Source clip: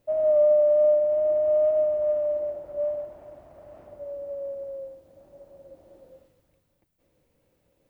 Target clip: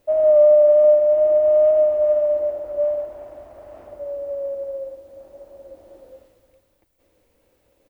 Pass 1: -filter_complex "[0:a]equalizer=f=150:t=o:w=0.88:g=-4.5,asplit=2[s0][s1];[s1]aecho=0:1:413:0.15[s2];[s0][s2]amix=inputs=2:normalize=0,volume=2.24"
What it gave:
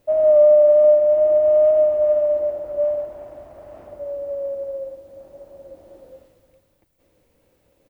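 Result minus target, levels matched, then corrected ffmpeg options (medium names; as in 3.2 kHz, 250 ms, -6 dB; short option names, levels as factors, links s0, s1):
125 Hz band +2.5 dB
-filter_complex "[0:a]equalizer=f=150:t=o:w=0.88:g=-12.5,asplit=2[s0][s1];[s1]aecho=0:1:413:0.15[s2];[s0][s2]amix=inputs=2:normalize=0,volume=2.24"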